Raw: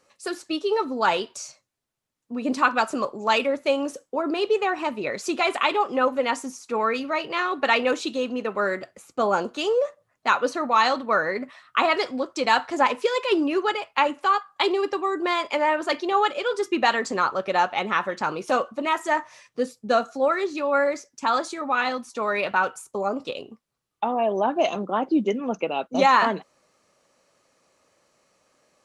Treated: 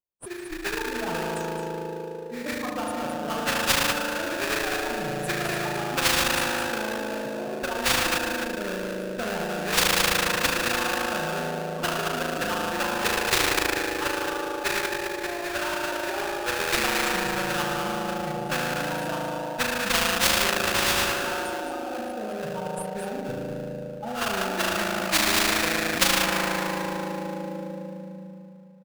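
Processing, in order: per-bin expansion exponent 3; elliptic band-stop 580–9000 Hz, stop band 50 dB; tilt shelf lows +7 dB; comb 5.7 ms, depth 73%; on a send: echo 0.216 s -7 dB; on the sum: reverb RT60 2.8 s, pre-delay 37 ms, DRR -3 dB; in parallel at -9.5 dB: sample-rate reducer 2100 Hz, jitter 20%; on the sum: high shelf 2600 Hz -7 dB; spectral compressor 10:1; gain +2 dB

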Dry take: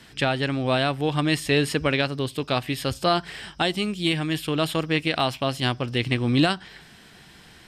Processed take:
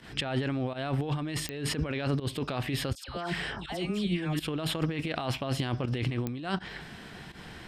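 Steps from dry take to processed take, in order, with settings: high shelf 3300 Hz -10.5 dB; negative-ratio compressor -31 dBFS, ratio -1; 2.95–4.4 dispersion lows, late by 0.132 s, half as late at 1300 Hz; pump 82 bpm, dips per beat 1, -14 dB, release 0.104 s; pops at 1.49/6.27, -17 dBFS

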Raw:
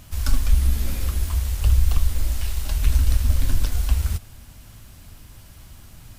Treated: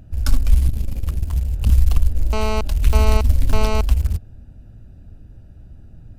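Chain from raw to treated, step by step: Wiener smoothing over 41 samples; 0.67–1.7 core saturation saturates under 81 Hz; 2.33–3.81 GSM buzz -27 dBFS; gain +3.5 dB

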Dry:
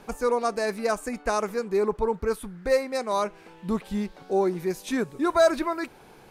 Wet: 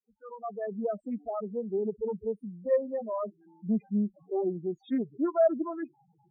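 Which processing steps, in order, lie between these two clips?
opening faded in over 0.73 s; spectral noise reduction 11 dB; dynamic EQ 920 Hz, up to -4 dB, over -37 dBFS, Q 1.2; loudest bins only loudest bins 4; speaker cabinet 210–3900 Hz, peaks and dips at 210 Hz +5 dB, 410 Hz -6 dB, 930 Hz -4 dB, 1500 Hz -9 dB, 2400 Hz -8 dB; Doppler distortion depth 0.16 ms

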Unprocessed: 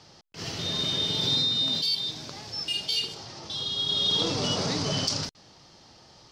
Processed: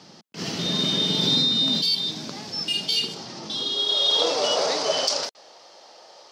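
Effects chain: high-pass sweep 200 Hz -> 560 Hz, 3.48–3.98; gain +4 dB

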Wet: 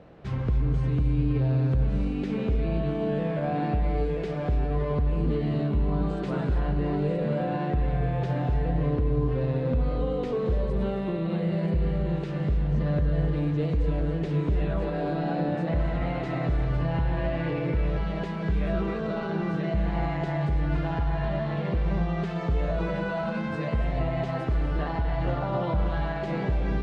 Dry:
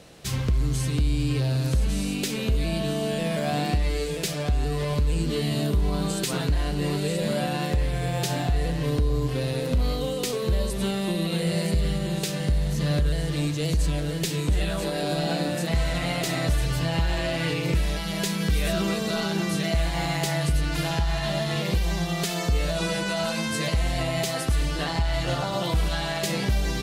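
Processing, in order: limiter -18.5 dBFS, peak gain reduction 4 dB; LPF 1400 Hz 12 dB/oct; non-linear reverb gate 0.31 s rising, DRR 6 dB

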